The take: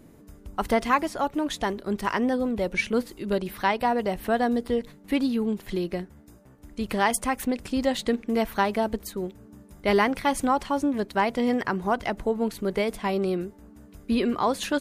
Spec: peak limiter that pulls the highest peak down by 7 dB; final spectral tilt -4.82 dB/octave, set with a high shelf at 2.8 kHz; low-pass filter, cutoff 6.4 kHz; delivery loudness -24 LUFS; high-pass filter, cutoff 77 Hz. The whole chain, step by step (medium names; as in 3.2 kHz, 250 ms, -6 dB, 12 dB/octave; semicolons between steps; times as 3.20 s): high-pass 77 Hz; low-pass 6.4 kHz; treble shelf 2.8 kHz -6 dB; trim +4.5 dB; peak limiter -12.5 dBFS